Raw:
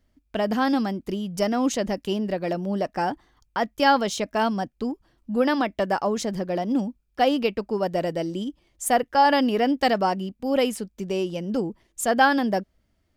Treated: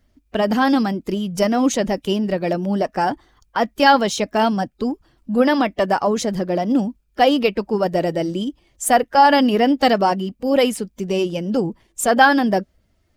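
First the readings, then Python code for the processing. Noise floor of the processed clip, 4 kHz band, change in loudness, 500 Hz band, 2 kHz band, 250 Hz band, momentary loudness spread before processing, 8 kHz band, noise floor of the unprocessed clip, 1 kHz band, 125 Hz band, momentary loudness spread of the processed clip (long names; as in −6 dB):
−63 dBFS, +6.0 dB, +5.5 dB, +5.5 dB, +6.0 dB, +5.5 dB, 11 LU, +5.5 dB, −70 dBFS, +5.5 dB, +6.0 dB, 11 LU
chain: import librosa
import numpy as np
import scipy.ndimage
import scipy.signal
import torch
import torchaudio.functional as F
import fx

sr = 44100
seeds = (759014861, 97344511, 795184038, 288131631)

y = fx.spec_quant(x, sr, step_db=15)
y = y * librosa.db_to_amplitude(6.0)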